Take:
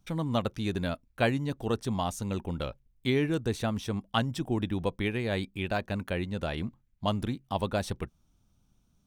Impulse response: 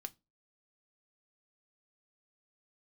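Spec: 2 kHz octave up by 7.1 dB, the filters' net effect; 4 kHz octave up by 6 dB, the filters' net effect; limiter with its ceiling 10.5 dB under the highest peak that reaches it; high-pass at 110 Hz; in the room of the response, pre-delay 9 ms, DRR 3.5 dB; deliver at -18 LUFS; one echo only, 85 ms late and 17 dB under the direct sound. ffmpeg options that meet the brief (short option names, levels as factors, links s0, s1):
-filter_complex "[0:a]highpass=110,equalizer=f=2000:t=o:g=8,equalizer=f=4000:t=o:g=4.5,alimiter=limit=0.158:level=0:latency=1,aecho=1:1:85:0.141,asplit=2[s0][s1];[1:a]atrim=start_sample=2205,adelay=9[s2];[s1][s2]afir=irnorm=-1:irlink=0,volume=1.06[s3];[s0][s3]amix=inputs=2:normalize=0,volume=3.98"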